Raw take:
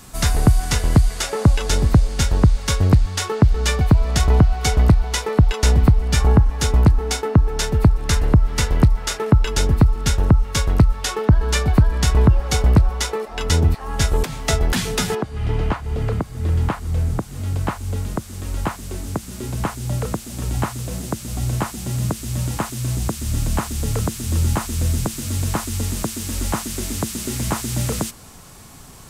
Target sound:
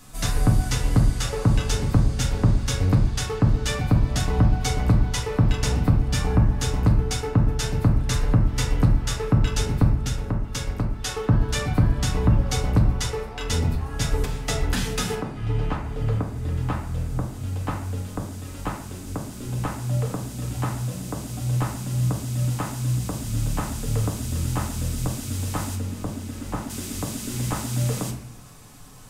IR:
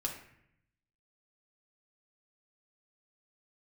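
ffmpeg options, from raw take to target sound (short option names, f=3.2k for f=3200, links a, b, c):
-filter_complex "[0:a]asplit=3[a][b][c];[a]afade=t=out:st=9.91:d=0.02[d];[b]acompressor=threshold=-20dB:ratio=2.5,afade=t=in:st=9.91:d=0.02,afade=t=out:st=11.02:d=0.02[e];[c]afade=t=in:st=11.02:d=0.02[f];[d][e][f]amix=inputs=3:normalize=0,asettb=1/sr,asplit=3[g][h][i];[g]atrim=end=25.754[j];[h]atrim=start=25.75:end=26.7,asetpts=PTS-STARTPTS,afade=t=in:d=0.004:c=qsin,afade=t=out:st=0.946:d=0.004:c=qsin,highshelf=f=2.3k:g=-10.5[k];[i]atrim=start=26.696[l];[j][k]acrossfade=d=0.004:c1=hsin:c2=qsin[m];[m][l]acrossfade=d=0.004:c1=qsin:c2=hsin[n];[1:a]atrim=start_sample=2205[o];[n][o]afir=irnorm=-1:irlink=0,volume=-6.5dB"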